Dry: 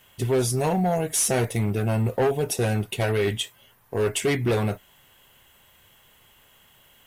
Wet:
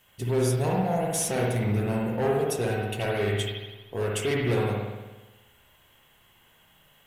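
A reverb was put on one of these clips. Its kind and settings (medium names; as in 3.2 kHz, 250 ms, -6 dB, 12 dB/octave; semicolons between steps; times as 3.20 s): spring tank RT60 1.2 s, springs 58 ms, chirp 45 ms, DRR -2 dB; trim -6 dB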